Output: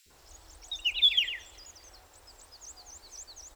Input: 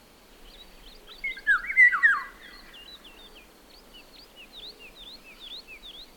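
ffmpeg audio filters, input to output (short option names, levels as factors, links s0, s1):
-filter_complex "[0:a]asetrate=76440,aresample=44100,acrossover=split=390|2200[s0][s1][s2];[s0]adelay=60[s3];[s1]adelay=100[s4];[s3][s4][s2]amix=inputs=3:normalize=0,volume=0.668"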